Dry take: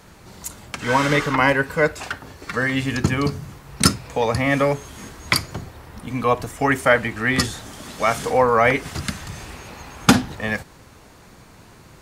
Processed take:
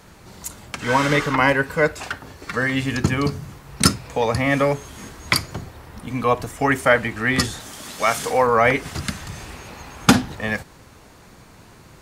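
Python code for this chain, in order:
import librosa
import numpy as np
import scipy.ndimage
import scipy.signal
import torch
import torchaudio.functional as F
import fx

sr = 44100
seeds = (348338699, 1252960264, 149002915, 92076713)

y = fx.tilt_eq(x, sr, slope=1.5, at=(7.6, 8.47))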